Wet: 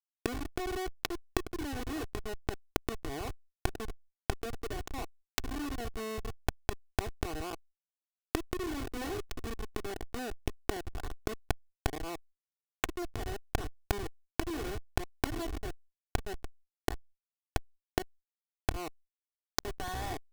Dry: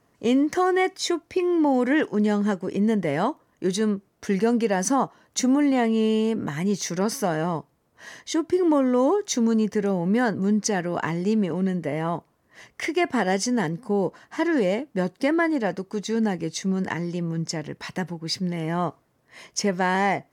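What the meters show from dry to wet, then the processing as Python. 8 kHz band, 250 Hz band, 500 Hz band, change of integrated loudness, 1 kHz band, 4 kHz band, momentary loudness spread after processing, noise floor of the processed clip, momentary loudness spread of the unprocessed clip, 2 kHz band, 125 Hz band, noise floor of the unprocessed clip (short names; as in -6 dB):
-13.5 dB, -19.0 dB, -15.5 dB, -15.0 dB, -13.0 dB, -9.0 dB, 6 LU, under -85 dBFS, 8 LU, -12.0 dB, -11.0 dB, -66 dBFS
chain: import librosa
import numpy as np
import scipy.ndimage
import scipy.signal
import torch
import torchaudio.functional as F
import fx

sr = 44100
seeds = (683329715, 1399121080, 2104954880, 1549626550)

p1 = fx.bandpass_edges(x, sr, low_hz=340.0, high_hz=4200.0)
p2 = p1 + fx.echo_thinned(p1, sr, ms=66, feedback_pct=59, hz=670.0, wet_db=-9.5, dry=0)
p3 = fx.schmitt(p2, sr, flips_db=-21.0)
p4 = fx.gate_flip(p3, sr, shuts_db=-32.0, range_db=-33)
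p5 = (np.mod(10.0 ** (30.0 / 20.0) * p4 + 1.0, 2.0) - 1.0) / 10.0 ** (30.0 / 20.0)
p6 = p4 + F.gain(torch.from_numpy(p5), -4.0).numpy()
p7 = p6 + 0.72 * np.pad(p6, (int(2.7 * sr / 1000.0), 0))[:len(p6)]
p8 = fx.env_flatten(p7, sr, amount_pct=50)
y = F.gain(torch.from_numpy(p8), 8.5).numpy()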